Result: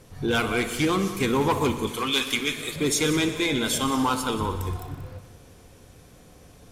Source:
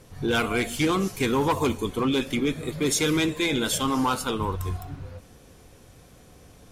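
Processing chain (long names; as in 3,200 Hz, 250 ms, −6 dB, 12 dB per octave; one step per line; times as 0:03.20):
0:01.87–0:02.76: tilt shelving filter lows −9.5 dB
echo machine with several playback heads 61 ms, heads all three, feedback 52%, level −16.5 dB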